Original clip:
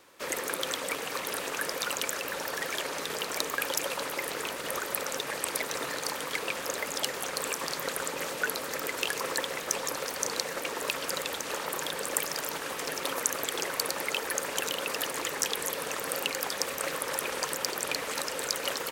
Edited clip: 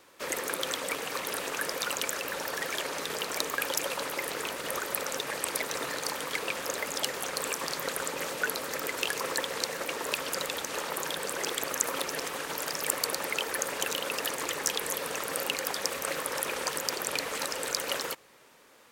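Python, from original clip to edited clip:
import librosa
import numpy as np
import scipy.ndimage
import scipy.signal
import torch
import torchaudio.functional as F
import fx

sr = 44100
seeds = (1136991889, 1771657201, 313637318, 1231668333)

y = fx.edit(x, sr, fx.cut(start_s=9.55, length_s=0.76),
    fx.reverse_span(start_s=12.12, length_s=1.59), tone=tone)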